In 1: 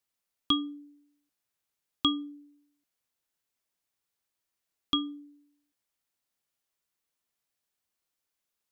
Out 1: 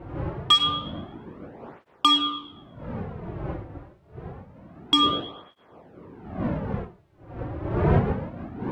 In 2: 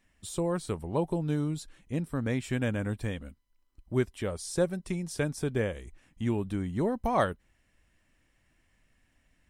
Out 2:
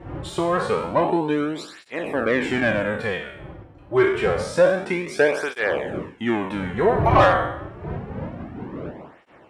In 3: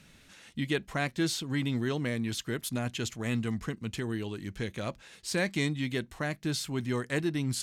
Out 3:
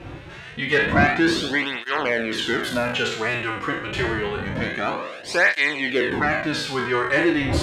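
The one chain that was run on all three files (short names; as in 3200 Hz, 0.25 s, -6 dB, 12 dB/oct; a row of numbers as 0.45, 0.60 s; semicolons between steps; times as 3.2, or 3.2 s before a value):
spectral trails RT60 0.74 s; wind noise 93 Hz -26 dBFS; tone controls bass -7 dB, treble -12 dB; overdrive pedal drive 21 dB, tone 2900 Hz, clips at -5 dBFS; tape flanging out of phase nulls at 0.27 Hz, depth 4.9 ms; gain +4 dB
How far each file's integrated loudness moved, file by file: +6.0, +10.0, +11.0 LU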